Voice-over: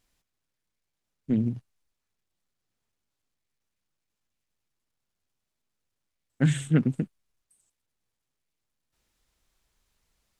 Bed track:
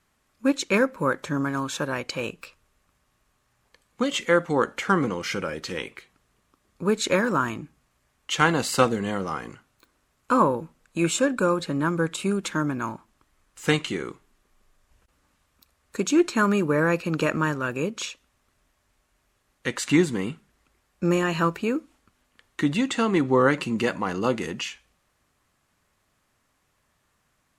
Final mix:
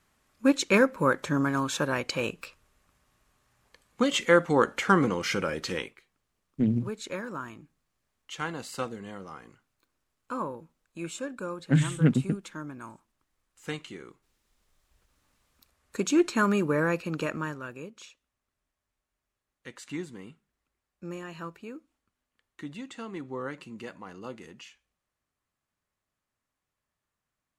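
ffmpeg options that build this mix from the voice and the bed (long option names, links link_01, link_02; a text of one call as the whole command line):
ffmpeg -i stem1.wav -i stem2.wav -filter_complex "[0:a]adelay=5300,volume=0dB[link_01];[1:a]volume=10.5dB,afade=type=out:start_time=5.74:duration=0.22:silence=0.211349,afade=type=in:start_time=14.36:duration=1.37:silence=0.298538,afade=type=out:start_time=16.61:duration=1.31:silence=0.211349[link_02];[link_01][link_02]amix=inputs=2:normalize=0" out.wav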